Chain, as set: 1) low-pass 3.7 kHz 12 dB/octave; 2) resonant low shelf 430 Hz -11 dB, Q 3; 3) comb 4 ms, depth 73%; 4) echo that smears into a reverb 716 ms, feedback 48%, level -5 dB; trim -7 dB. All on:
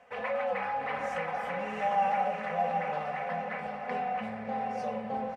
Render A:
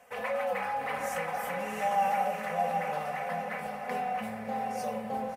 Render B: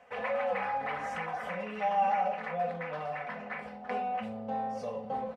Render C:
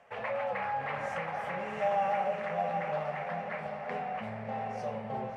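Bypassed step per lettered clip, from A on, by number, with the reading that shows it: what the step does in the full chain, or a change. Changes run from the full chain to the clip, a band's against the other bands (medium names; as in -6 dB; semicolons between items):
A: 1, 4 kHz band +2.0 dB; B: 4, echo-to-direct -4.0 dB to none; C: 3, loudness change -2.0 LU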